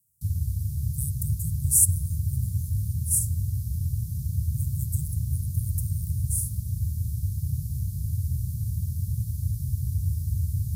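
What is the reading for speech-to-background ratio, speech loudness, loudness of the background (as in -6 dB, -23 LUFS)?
1.5 dB, -28.0 LUFS, -29.5 LUFS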